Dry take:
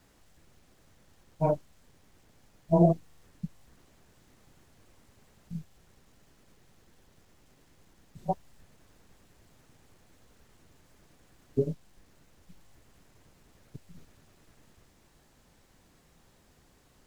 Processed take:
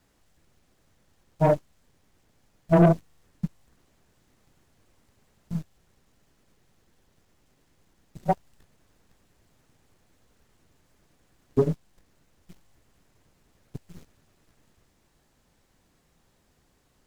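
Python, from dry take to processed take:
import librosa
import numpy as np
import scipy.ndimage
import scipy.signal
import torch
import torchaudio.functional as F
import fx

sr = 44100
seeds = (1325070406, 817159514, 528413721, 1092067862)

y = fx.leveller(x, sr, passes=2)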